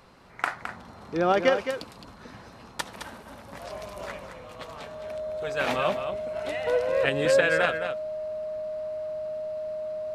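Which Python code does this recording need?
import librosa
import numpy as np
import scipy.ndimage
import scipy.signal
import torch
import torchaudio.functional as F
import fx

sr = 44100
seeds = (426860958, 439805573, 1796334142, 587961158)

y = fx.notch(x, sr, hz=620.0, q=30.0)
y = fx.fix_echo_inverse(y, sr, delay_ms=214, level_db=-8.5)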